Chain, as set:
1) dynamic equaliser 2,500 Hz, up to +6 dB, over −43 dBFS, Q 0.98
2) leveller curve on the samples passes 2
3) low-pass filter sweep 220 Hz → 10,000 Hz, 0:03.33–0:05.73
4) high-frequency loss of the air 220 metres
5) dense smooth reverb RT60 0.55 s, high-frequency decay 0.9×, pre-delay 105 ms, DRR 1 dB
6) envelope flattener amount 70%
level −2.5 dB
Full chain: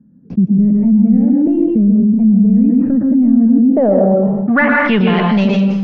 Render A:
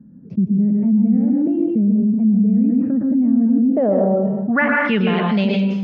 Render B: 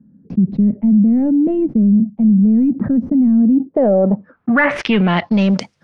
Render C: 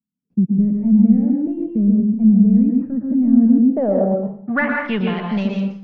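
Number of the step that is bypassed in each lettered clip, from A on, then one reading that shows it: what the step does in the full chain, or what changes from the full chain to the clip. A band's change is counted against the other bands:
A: 2, change in integrated loudness −5.0 LU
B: 5, change in momentary loudness spread +3 LU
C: 6, change in crest factor +2.5 dB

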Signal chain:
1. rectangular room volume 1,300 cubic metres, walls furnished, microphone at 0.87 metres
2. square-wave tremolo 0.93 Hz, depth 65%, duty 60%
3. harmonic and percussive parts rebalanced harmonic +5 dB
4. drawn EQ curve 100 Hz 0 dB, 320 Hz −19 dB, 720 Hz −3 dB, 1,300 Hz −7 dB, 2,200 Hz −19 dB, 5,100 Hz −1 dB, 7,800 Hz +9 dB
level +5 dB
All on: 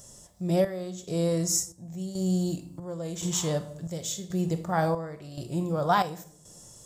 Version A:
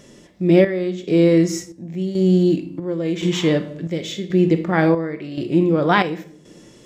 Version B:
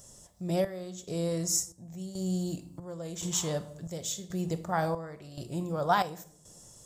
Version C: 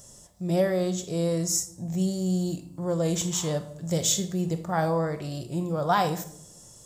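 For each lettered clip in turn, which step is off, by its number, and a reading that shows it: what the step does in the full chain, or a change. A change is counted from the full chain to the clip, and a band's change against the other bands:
4, 8 kHz band −15.5 dB
3, 125 Hz band −2.5 dB
2, change in momentary loudness spread −4 LU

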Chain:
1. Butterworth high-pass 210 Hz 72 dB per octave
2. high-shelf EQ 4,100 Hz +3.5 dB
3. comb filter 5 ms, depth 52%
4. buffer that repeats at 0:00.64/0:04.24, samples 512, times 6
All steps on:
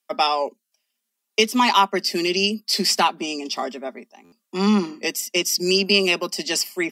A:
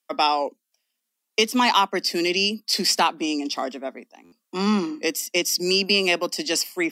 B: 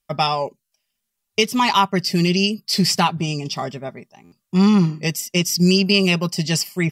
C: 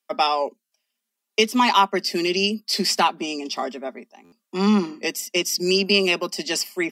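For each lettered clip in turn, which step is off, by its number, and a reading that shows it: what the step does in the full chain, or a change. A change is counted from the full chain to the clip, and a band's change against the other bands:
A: 3, 125 Hz band −2.0 dB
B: 1, 125 Hz band +13.0 dB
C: 2, 8 kHz band −2.5 dB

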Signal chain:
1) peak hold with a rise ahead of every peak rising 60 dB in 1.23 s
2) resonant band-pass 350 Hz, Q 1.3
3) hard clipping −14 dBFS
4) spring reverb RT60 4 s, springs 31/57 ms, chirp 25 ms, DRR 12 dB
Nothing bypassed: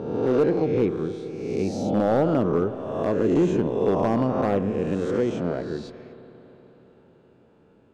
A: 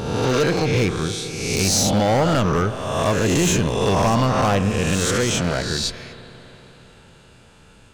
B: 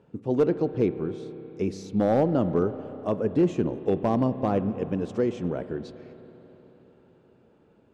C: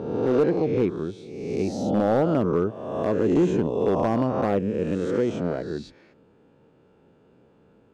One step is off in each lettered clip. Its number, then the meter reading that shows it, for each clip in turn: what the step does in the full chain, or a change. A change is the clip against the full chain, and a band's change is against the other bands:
2, 4 kHz band +14.0 dB
1, 2 kHz band −3.0 dB
4, change in crest factor −2.0 dB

